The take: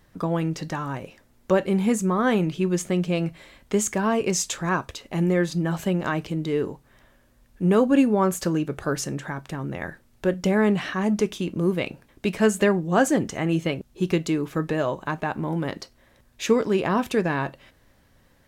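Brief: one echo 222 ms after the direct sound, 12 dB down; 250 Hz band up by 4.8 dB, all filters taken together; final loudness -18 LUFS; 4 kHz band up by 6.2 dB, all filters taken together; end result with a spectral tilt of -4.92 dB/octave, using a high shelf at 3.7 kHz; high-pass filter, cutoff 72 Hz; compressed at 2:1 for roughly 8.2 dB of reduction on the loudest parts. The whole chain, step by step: high-pass 72 Hz; peaking EQ 250 Hz +6.5 dB; treble shelf 3.7 kHz +7.5 dB; peaking EQ 4 kHz +3.5 dB; compression 2:1, threshold -24 dBFS; delay 222 ms -12 dB; trim +7.5 dB

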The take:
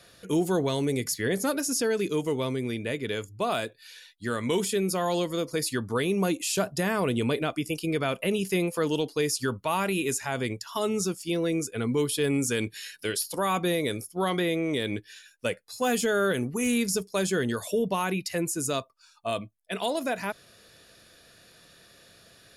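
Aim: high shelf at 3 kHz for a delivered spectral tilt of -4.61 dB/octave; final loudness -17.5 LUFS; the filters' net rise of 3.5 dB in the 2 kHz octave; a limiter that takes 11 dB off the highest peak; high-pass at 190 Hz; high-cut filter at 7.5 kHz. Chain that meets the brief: high-pass 190 Hz; low-pass 7.5 kHz; peaking EQ 2 kHz +8 dB; treble shelf 3 kHz -9 dB; trim +15.5 dB; peak limiter -7 dBFS

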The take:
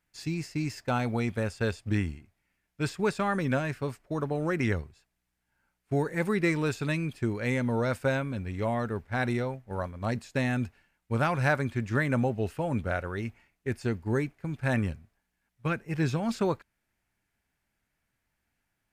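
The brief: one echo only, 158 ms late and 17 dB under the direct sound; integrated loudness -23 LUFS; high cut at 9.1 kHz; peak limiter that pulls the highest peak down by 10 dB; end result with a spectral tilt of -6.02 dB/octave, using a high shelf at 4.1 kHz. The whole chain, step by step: low-pass 9.1 kHz; treble shelf 4.1 kHz +4.5 dB; peak limiter -22 dBFS; delay 158 ms -17 dB; trim +10 dB

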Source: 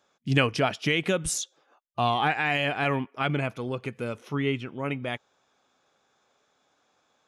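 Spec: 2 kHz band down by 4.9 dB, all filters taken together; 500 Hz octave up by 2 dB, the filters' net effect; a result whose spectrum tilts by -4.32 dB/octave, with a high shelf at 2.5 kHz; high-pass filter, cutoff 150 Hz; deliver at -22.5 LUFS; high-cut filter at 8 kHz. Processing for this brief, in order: high-pass 150 Hz; low-pass 8 kHz; peaking EQ 500 Hz +3 dB; peaking EQ 2 kHz -4 dB; treble shelf 2.5 kHz -5 dB; trim +6 dB

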